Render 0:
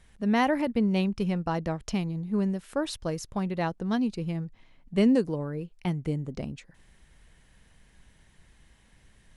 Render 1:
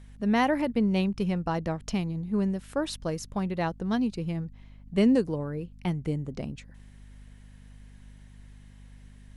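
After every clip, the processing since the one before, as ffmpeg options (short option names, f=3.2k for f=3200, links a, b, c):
-af "aeval=exprs='val(0)+0.00398*(sin(2*PI*50*n/s)+sin(2*PI*2*50*n/s)/2+sin(2*PI*3*50*n/s)/3+sin(2*PI*4*50*n/s)/4+sin(2*PI*5*50*n/s)/5)':c=same"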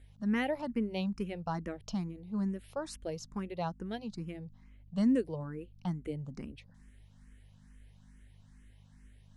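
-filter_complex "[0:a]asplit=2[a][b];[b]afreqshift=2.3[c];[a][c]amix=inputs=2:normalize=1,volume=-5dB"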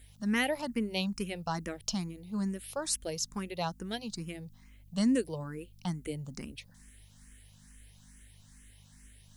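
-af "crystalizer=i=5.5:c=0"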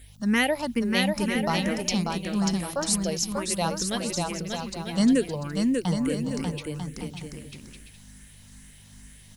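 -af "aecho=1:1:590|944|1156|1284|1360:0.631|0.398|0.251|0.158|0.1,volume=6.5dB"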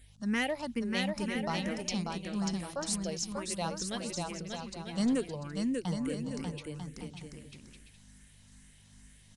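-af "aeval=exprs='clip(val(0),-1,0.133)':c=same,aresample=22050,aresample=44100,volume=-8dB"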